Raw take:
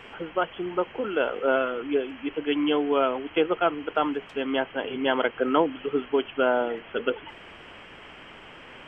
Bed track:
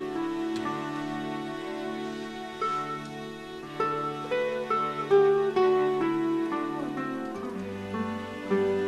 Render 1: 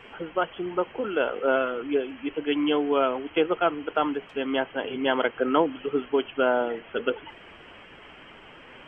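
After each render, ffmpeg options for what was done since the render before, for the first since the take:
-af "afftdn=nr=6:nf=-46"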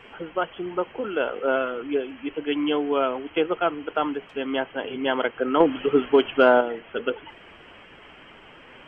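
-filter_complex "[0:a]asettb=1/sr,asplit=3[a][b][c];[a]atrim=end=5.604[d];[b]atrim=start=5.6:end=6.61,asetpts=PTS-STARTPTS,afade=t=in:d=0.004:c=qsin,afade=t=out:st=1.006:d=0.004:c=qsin,acontrast=79[e];[c]atrim=start=6.606[f];[d][e]acrossfade=d=0.004:c1=hsin:c2=qsin[g];[g][f]acrossfade=d=0.004:c1=qsin:c2=hsin"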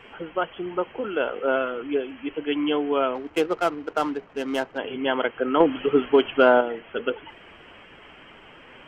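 -filter_complex "[0:a]asettb=1/sr,asplit=3[a][b][c];[a]atrim=end=3.154[d];[b]atrim=start=3.15:end=4.78,asetpts=PTS-STARTPTS,afade=t=in:d=0.004:c=qsin,afade=t=out:st=1.626:d=0.004:c=qsin,adynamicsmooth=sensitivity=5.5:basefreq=1.1k[e];[c]atrim=start=4.776[f];[d][e]acrossfade=d=0.004:c1=hsin:c2=qsin[g];[g][f]acrossfade=d=0.004:c1=qsin:c2=hsin"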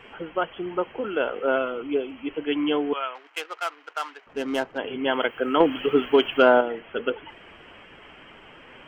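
-filter_complex "[0:a]asettb=1/sr,asplit=3[a][b][c];[a]atrim=end=1.584[d];[b]atrim=start=1.58:end=2.29,asetpts=PTS-STARTPTS,afade=t=in:d=0.004:c=qsin,afade=t=out:st=0.706:d=0.004:c=qsin,equalizer=f=1.7k:t=o:w=0.22:g=-11[e];[c]atrim=start=2.286[f];[d][e]acrossfade=d=0.004:c1=hsin:c2=qsin[g];[g][f]acrossfade=d=0.004:c1=qsin:c2=hsin,asettb=1/sr,asplit=3[h][i][j];[h]atrim=end=2.934[k];[i]atrim=start=2.93:end=4.27,asetpts=PTS-STARTPTS,afade=t=in:d=0.004:c=qsin,afade=t=out:st=1.336:d=0.004:c=qsin,highpass=1.2k[l];[j]atrim=start=4.266[m];[k][l]acrossfade=d=0.004:c1=hsin:c2=qsin[n];[n][m]acrossfade=d=0.004:c1=qsin:c2=hsin,asplit=3[o][p][q];[o]afade=t=out:st=5.11:d=0.02[r];[p]aemphasis=mode=production:type=75fm,afade=t=in:st=5.11:d=0.02,afade=t=out:st=6.41:d=0.02[s];[q]afade=t=in:st=6.41:d=0.02[t];[r][s][t]amix=inputs=3:normalize=0"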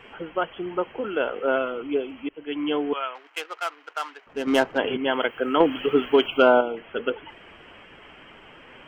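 -filter_complex "[0:a]asettb=1/sr,asplit=3[a][b][c];[a]atrim=end=4.474[d];[b]atrim=start=4.47:end=4.97,asetpts=PTS-STARTPTS,afade=t=in:d=0.004:c=qsin,afade=t=out:st=0.496:d=0.004:c=qsin,acontrast=61[e];[c]atrim=start=4.966[f];[d][e]acrossfade=d=0.004:c1=hsin:c2=qsin[g];[g][f]acrossfade=d=0.004:c1=qsin:c2=hsin,asettb=1/sr,asplit=3[h][i][j];[h]atrim=end=6.264[k];[i]atrim=start=6.26:end=6.77,asetpts=PTS-STARTPTS,afade=t=in:d=0.004:c=qsin,afade=t=out:st=0.506:d=0.004:c=qsin,asuperstop=centerf=1800:order=8:qfactor=3.1[l];[j]atrim=start=6.766[m];[k][l]acrossfade=d=0.004:c1=hsin:c2=qsin[n];[n][m]acrossfade=d=0.004:c1=qsin:c2=hsin,asplit=2[o][p];[o]atrim=end=2.29,asetpts=PTS-STARTPTS,afade=t=out:st=2.286:d=0.004:c=hsin:silence=0.11885[q];[p]atrim=start=2.29,asetpts=PTS-STARTPTS,afade=t=in:d=0.69:c=qsin:silence=0.11885[r];[q][r]concat=n=2:v=0:a=1"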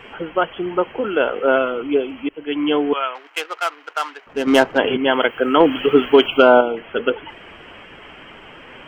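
-af "volume=7dB,alimiter=limit=-1dB:level=0:latency=1"

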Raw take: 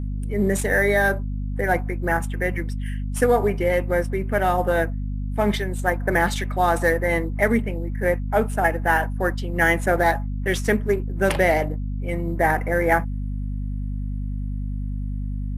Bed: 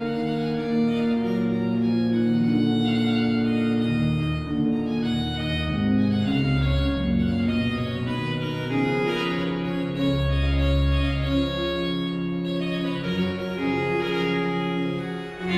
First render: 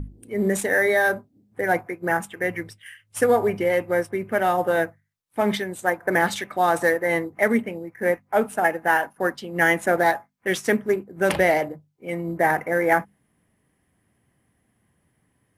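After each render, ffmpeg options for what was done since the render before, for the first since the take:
-af "bandreject=f=50:t=h:w=6,bandreject=f=100:t=h:w=6,bandreject=f=150:t=h:w=6,bandreject=f=200:t=h:w=6,bandreject=f=250:t=h:w=6"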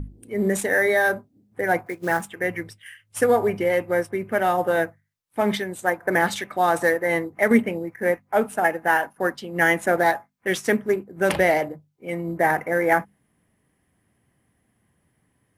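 -filter_complex "[0:a]asettb=1/sr,asplit=3[a][b][c];[a]atrim=end=1.864[d];[b]atrim=start=1.86:end=2.29,asetpts=PTS-STARTPTS,afade=t=in:d=0.004:c=qsin,afade=t=out:st=0.426:d=0.004:c=qsin,acrusher=bits=5:mode=log:mix=0:aa=0.000001[e];[c]atrim=start=2.286[f];[d][e]acrossfade=d=0.004:c1=hsin:c2=qsin[g];[g][f]acrossfade=d=0.004:c1=qsin:c2=hsin,asplit=3[h][i][j];[h]atrim=end=7.512[k];[i]atrim=start=7.508:end=7.962,asetpts=PTS-STARTPTS,volume=4.5dB[l];[j]atrim=start=7.958[m];[k][l]acrossfade=d=0.004:c1=hsin:c2=hsin[n];[n][m]acrossfade=d=0.004:c1=hsin:c2=hsin"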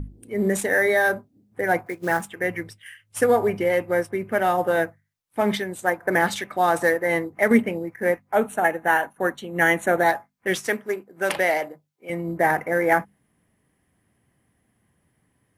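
-filter_complex "[0:a]asettb=1/sr,asplit=3[a][b][c];[a]atrim=end=8.354[d];[b]atrim=start=8.35:end=10.09,asetpts=PTS-STARTPTS,afade=t=in:d=0.004:c=qsin,afade=t=out:st=1.736:d=0.004:c=qsin,asuperstop=centerf=5000:order=8:qfactor=4.8[e];[c]atrim=start=10.086[f];[d][e]acrossfade=d=0.004:c1=hsin:c2=qsin[g];[g][f]acrossfade=d=0.004:c1=qsin:c2=hsin,asettb=1/sr,asplit=3[h][i][j];[h]atrim=end=10.674[k];[i]atrim=start=10.67:end=12.1,asetpts=PTS-STARTPTS,afade=t=in:d=0.004:c=qsin,afade=t=out:st=1.426:d=0.004:c=qsin,highpass=f=610:p=1[l];[j]atrim=start=12.096[m];[k][l]acrossfade=d=0.004:c1=hsin:c2=qsin[n];[n][m]acrossfade=d=0.004:c1=qsin:c2=hsin"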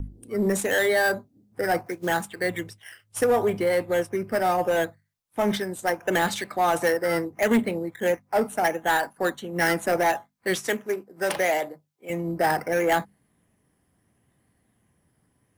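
-filter_complex "[0:a]acrossover=split=390|1400|2200[a][b][c][d];[c]acrusher=samples=10:mix=1:aa=0.000001:lfo=1:lforange=6:lforate=0.74[e];[a][b][e][d]amix=inputs=4:normalize=0,asoftclip=type=tanh:threshold=-14dB"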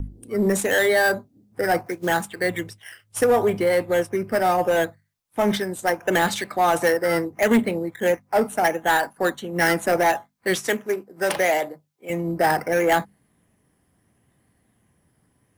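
-af "volume=3dB"

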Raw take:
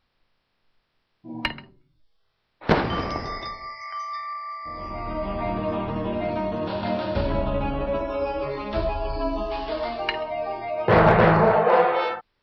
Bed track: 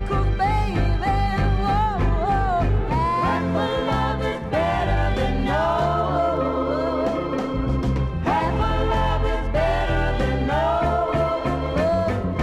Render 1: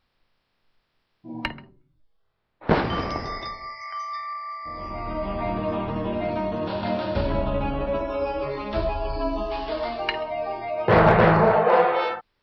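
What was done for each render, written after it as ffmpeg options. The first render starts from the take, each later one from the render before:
-filter_complex "[0:a]asettb=1/sr,asplit=3[a][b][c];[a]atrim=end=1.454[d];[b]atrim=start=1.45:end=2.73,asetpts=PTS-STARTPTS,afade=t=in:d=0.004:c=qsin,afade=t=out:st=1.276:d=0.004:c=qsin,lowpass=f=1.4k:p=1[e];[c]atrim=start=2.726[f];[d][e]acrossfade=d=0.004:c1=hsin:c2=qsin[g];[g][f]acrossfade=d=0.004:c1=qsin:c2=hsin"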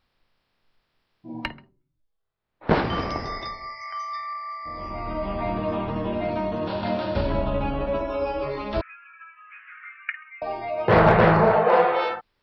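-filter_complex "[0:a]asettb=1/sr,asplit=3[a][b][c];[a]atrim=end=8.814[d];[b]atrim=start=8.81:end=10.42,asetpts=PTS-STARTPTS,afade=t=in:d=0.004:c=qsin,afade=t=out:st=1.606:d=0.004:c=qsin,asuperpass=centerf=1800:order=12:qfactor=1.5[e];[c]atrim=start=10.416[f];[d][e]acrossfade=d=0.004:c1=hsin:c2=qsin[g];[g][f]acrossfade=d=0.004:c1=qsin:c2=hsin,asplit=3[h][i][j];[h]atrim=end=1.7,asetpts=PTS-STARTPTS,afade=t=out:st=1.36:d=0.34:silence=0.298538[k];[i]atrim=start=1.7:end=2.39,asetpts=PTS-STARTPTS,volume=-10.5dB[l];[j]atrim=start=2.39,asetpts=PTS-STARTPTS,afade=t=in:d=0.34:silence=0.298538[m];[k][l][m]concat=n=3:v=0:a=1"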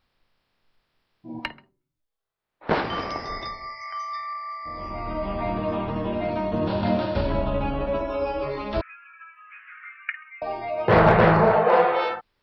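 -filter_complex "[0:a]asettb=1/sr,asplit=3[a][b][c];[a]atrim=end=1.394[d];[b]atrim=start=1.39:end=3.3,asetpts=PTS-STARTPTS,afade=t=in:d=0.004:c=qsin,afade=t=out:st=1.906:d=0.004:c=qsin,lowshelf=f=260:g=-9.5[e];[c]atrim=start=3.296[f];[d][e]acrossfade=d=0.004:c1=hsin:c2=qsin[g];[g][f]acrossfade=d=0.004:c1=qsin:c2=hsin,asettb=1/sr,asplit=3[h][i][j];[h]atrim=end=6.534[k];[i]atrim=start=6.53:end=7.06,asetpts=PTS-STARTPTS,afade=t=in:d=0.004:c=qsin,afade=t=out:st=0.526:d=0.004:c=qsin,lowshelf=f=370:g=7[l];[j]atrim=start=7.056[m];[k][l]acrossfade=d=0.004:c1=hsin:c2=qsin[n];[n][m]acrossfade=d=0.004:c1=qsin:c2=hsin"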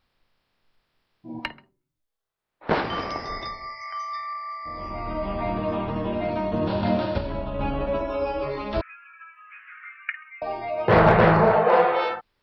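-filter_complex "[0:a]asplit=3[a][b][c];[a]atrim=end=7.182[d];[b]atrim=start=7.178:end=7.592,asetpts=PTS-STARTPTS,volume=-5.5dB[e];[c]atrim=start=7.588[f];[d][e]acrossfade=d=0.004:c1=hsin:c2=hsin[g];[g][f]acrossfade=d=0.004:c1=hsin:c2=hsin"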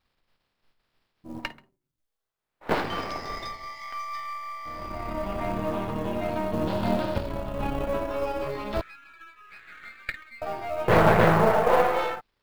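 -af "aeval=exprs='if(lt(val(0),0),0.447*val(0),val(0))':c=same,acrusher=bits=7:mode=log:mix=0:aa=0.000001"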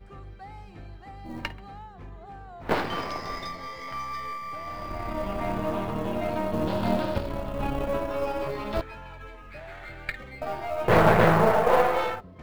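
-filter_complex "[1:a]volume=-23dB[a];[0:a][a]amix=inputs=2:normalize=0"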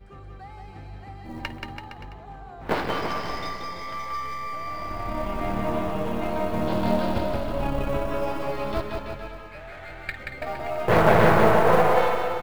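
-af "aecho=1:1:180|333|463|573.6|667.6:0.631|0.398|0.251|0.158|0.1"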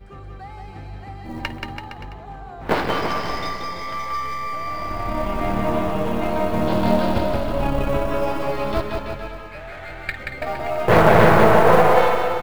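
-af "volume=5dB,alimiter=limit=-1dB:level=0:latency=1"

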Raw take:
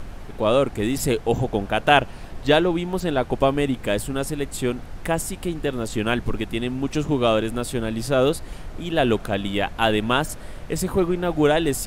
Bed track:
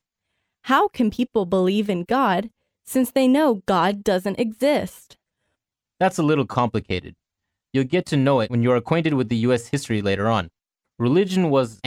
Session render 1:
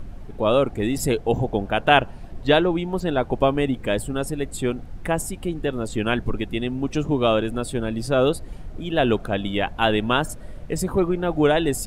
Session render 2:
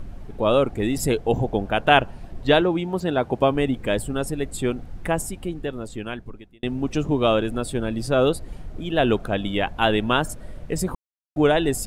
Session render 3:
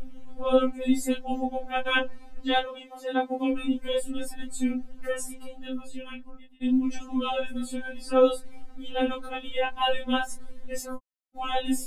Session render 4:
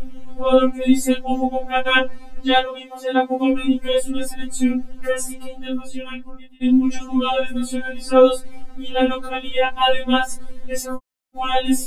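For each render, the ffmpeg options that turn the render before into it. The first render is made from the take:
-af "afftdn=nr=10:nf=-37"
-filter_complex "[0:a]asettb=1/sr,asplit=3[a][b][c];[a]atrim=end=2.614[d];[b]atrim=start=2.61:end=3.51,asetpts=PTS-STARTPTS,afade=t=in:d=0.004:c=qsin,afade=t=out:st=0.896:d=0.004:c=qsin,highpass=76[e];[c]atrim=start=3.506[f];[d][e]acrossfade=d=0.004:c1=hsin:c2=qsin[g];[g][f]acrossfade=d=0.004:c1=qsin:c2=hsin,asplit=4[h][i][j][k];[h]atrim=end=6.63,asetpts=PTS-STARTPTS,afade=t=out:st=5.1:d=1.53[l];[i]atrim=start=6.63:end=10.95,asetpts=PTS-STARTPTS,afade=t=in:d=0.004:c=hsin,afade=t=out:st=4.316:d=0.004:c=hsin[m];[j]atrim=start=10.95:end=11.36,asetpts=PTS-STARTPTS,volume=0[n];[k]atrim=start=11.36,asetpts=PTS-STARTPTS,afade=t=in:d=0.004:c=hsin[o];[l][m][n][o]concat=n=4:v=0:a=1"
-af "flanger=delay=19:depth=2.9:speed=0.17,afftfilt=real='re*3.46*eq(mod(b,12),0)':imag='im*3.46*eq(mod(b,12),0)':win_size=2048:overlap=0.75"
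-af "volume=8.5dB,alimiter=limit=-3dB:level=0:latency=1"

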